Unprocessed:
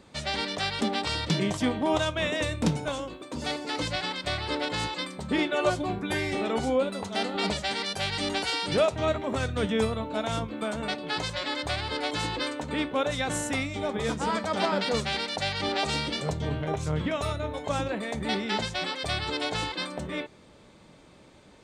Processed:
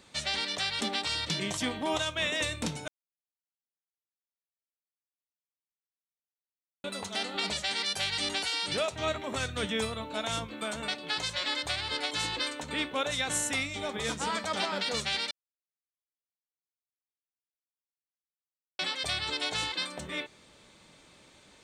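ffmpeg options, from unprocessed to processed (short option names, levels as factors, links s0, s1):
-filter_complex "[0:a]asplit=5[s0][s1][s2][s3][s4];[s0]atrim=end=2.88,asetpts=PTS-STARTPTS,afade=t=out:st=2.876:d=0.004:c=hsin[s5];[s1]atrim=start=2.88:end=6.84,asetpts=PTS-STARTPTS,volume=0[s6];[s2]atrim=start=6.84:end=15.31,asetpts=PTS-STARTPTS,afade=t=in:d=0.004:c=hsin,afade=t=out:st=8.466:d=0.004:c=hsin[s7];[s3]atrim=start=15.31:end=18.79,asetpts=PTS-STARTPTS,volume=0[s8];[s4]atrim=start=18.79,asetpts=PTS-STARTPTS,afade=t=in:d=0.004:c=hsin[s9];[s5][s6][s7][s8][s9]concat=n=5:v=0:a=1,tiltshelf=f=1400:g=-6,bandreject=f=4900:w=21,alimiter=limit=0.133:level=0:latency=1:release=241,volume=0.841"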